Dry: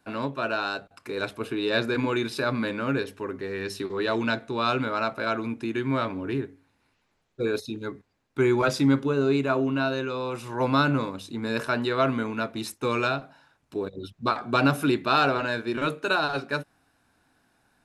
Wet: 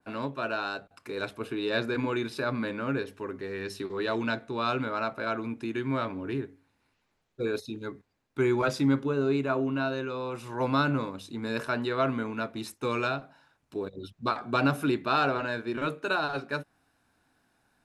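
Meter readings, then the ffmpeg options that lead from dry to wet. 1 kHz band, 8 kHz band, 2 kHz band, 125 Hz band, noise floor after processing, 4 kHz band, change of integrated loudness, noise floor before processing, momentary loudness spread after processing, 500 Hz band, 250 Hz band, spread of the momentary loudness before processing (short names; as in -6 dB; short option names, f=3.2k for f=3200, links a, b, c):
-3.5 dB, -5.5 dB, -4.0 dB, -3.5 dB, -75 dBFS, -5.5 dB, -3.5 dB, -72 dBFS, 11 LU, -3.5 dB, -3.5 dB, 11 LU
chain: -af "adynamicequalizer=threshold=0.01:dfrequency=2600:dqfactor=0.7:tfrequency=2600:tqfactor=0.7:attack=5:release=100:ratio=0.375:range=2:mode=cutabove:tftype=highshelf,volume=-3.5dB"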